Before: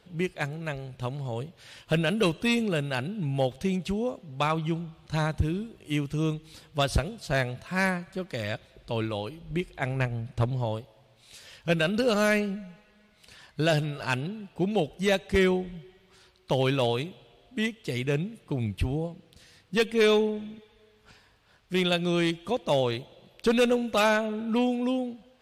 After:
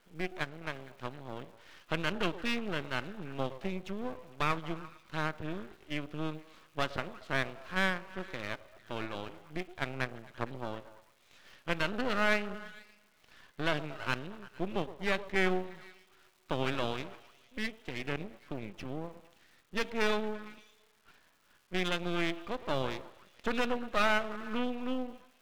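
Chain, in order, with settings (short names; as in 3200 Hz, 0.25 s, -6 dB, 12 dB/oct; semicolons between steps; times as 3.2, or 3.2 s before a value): speaker cabinet 290–3100 Hz, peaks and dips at 480 Hz -8 dB, 780 Hz -7 dB, 1300 Hz +4 dB, 2700 Hz -3 dB; delay with a stepping band-pass 0.114 s, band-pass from 470 Hz, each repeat 0.7 oct, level -11 dB; on a send at -17 dB: reverb RT60 0.45 s, pre-delay 3 ms; on the sum: half-wave rectifier; crackle 450/s -56 dBFS; ending taper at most 530 dB/s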